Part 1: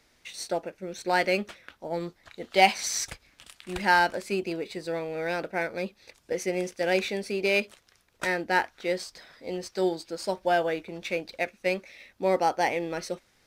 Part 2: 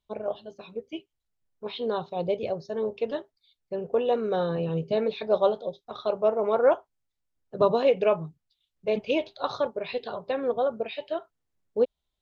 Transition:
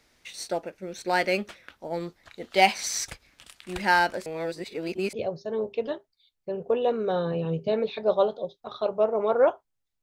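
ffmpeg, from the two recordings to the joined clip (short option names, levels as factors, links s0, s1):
-filter_complex "[0:a]apad=whole_dur=10.02,atrim=end=10.02,asplit=2[s0][s1];[s0]atrim=end=4.262[s2];[s1]atrim=start=4.258:end=5.132,asetpts=PTS-STARTPTS,areverse[s3];[1:a]atrim=start=2.368:end=7.26[s4];[s2][s3]acrossfade=d=0.004:c1=hsin:c2=hsin[s5];[s5][s4]acrossfade=d=0.004:c1=hsin:c2=hsin"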